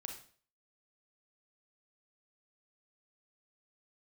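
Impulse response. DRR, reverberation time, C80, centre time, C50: 2.5 dB, 0.45 s, 10.5 dB, 23 ms, 6.0 dB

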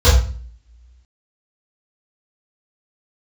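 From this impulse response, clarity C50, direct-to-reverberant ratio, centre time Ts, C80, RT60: 5.5 dB, -14.0 dB, 40 ms, 9.0 dB, 0.40 s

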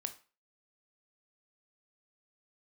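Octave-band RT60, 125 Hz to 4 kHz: 0.30, 0.35, 0.35, 0.35, 0.35, 0.30 s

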